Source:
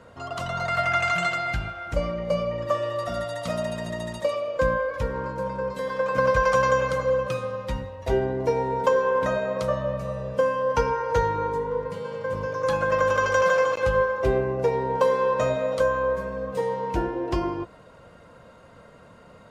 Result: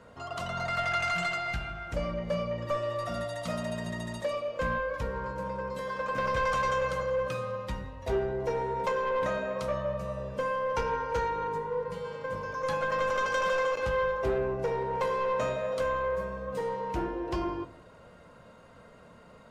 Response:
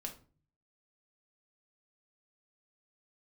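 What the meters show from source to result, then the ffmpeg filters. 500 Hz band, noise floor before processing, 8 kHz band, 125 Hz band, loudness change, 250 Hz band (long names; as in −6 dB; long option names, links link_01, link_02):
−7.0 dB, −50 dBFS, −5.5 dB, −6.5 dB, −6.5 dB, −5.5 dB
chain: -filter_complex "[0:a]bandreject=frequency=52.27:width_type=h:width=4,bandreject=frequency=104.54:width_type=h:width=4,bandreject=frequency=156.81:width_type=h:width=4,bandreject=frequency=209.08:width_type=h:width=4,bandreject=frequency=261.35:width_type=h:width=4,bandreject=frequency=313.62:width_type=h:width=4,bandreject=frequency=365.89:width_type=h:width=4,bandreject=frequency=418.16:width_type=h:width=4,bandreject=frequency=470.43:width_type=h:width=4,bandreject=frequency=522.7:width_type=h:width=4,bandreject=frequency=574.97:width_type=h:width=4,bandreject=frequency=627.24:width_type=h:width=4,bandreject=frequency=679.51:width_type=h:width=4,asoftclip=type=tanh:threshold=-19.5dB,asplit=2[link_01][link_02];[1:a]atrim=start_sample=2205[link_03];[link_02][link_03]afir=irnorm=-1:irlink=0,volume=-2dB[link_04];[link_01][link_04]amix=inputs=2:normalize=0,volume=-7dB"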